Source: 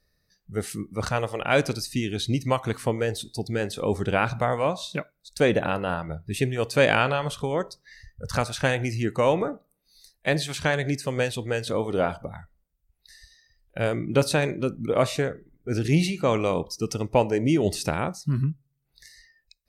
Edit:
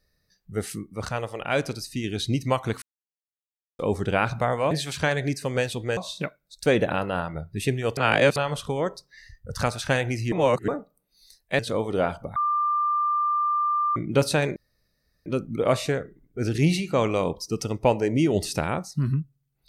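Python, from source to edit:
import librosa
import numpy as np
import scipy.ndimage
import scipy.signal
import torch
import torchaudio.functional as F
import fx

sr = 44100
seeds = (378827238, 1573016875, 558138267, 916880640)

y = fx.edit(x, sr, fx.clip_gain(start_s=0.79, length_s=1.25, db=-3.5),
    fx.silence(start_s=2.82, length_s=0.97),
    fx.reverse_span(start_s=6.71, length_s=0.39),
    fx.reverse_span(start_s=9.06, length_s=0.36),
    fx.move(start_s=10.33, length_s=1.26, to_s=4.71),
    fx.bleep(start_s=12.36, length_s=1.6, hz=1190.0, db=-20.5),
    fx.insert_room_tone(at_s=14.56, length_s=0.7), tone=tone)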